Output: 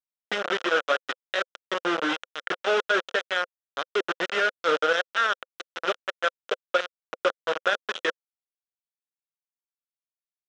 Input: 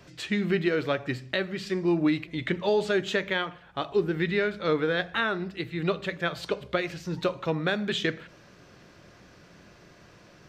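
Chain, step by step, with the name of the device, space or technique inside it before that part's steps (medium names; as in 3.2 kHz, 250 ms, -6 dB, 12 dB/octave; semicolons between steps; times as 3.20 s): hand-held game console (bit crusher 4-bit; cabinet simulation 490–5000 Hz, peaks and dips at 520 Hz +8 dB, 890 Hz -5 dB, 1.4 kHz +9 dB, 2.2 kHz -5 dB, 3.2 kHz +4 dB, 4.5 kHz -10 dB)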